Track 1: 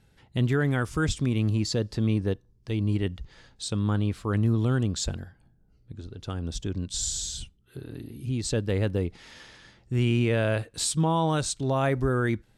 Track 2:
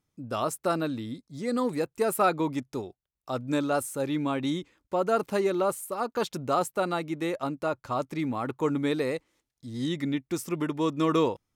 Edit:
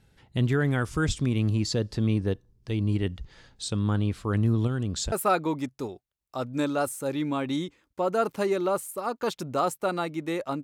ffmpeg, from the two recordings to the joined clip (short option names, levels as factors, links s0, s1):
-filter_complex "[0:a]asettb=1/sr,asplit=3[s0][s1][s2];[s0]atrim=end=4.674[s3];[s1]atrim=start=4.67:end=5.12,asetpts=PTS-STARTPTS,afade=t=in:d=0.004:c=qsin,afade=t=out:st=0.446:d=0.004:c=qsin,acompressor=threshold=0.0501:ratio=2.5:attack=3.2:release=140:knee=1:detection=peak[s4];[s2]atrim=start=5.116[s5];[s3][s4]acrossfade=d=0.004:c1=hsin:c2=qsin[s6];[s6][s5]acrossfade=d=0.004:c1=qsin:c2=hsin,apad=whole_dur=10.63,atrim=end=10.63,atrim=end=5.122[s7];[1:a]atrim=start=2.058:end=7.57[s8];[s7][s8]acrossfade=d=0.004:c1=hsin:c2=hsin"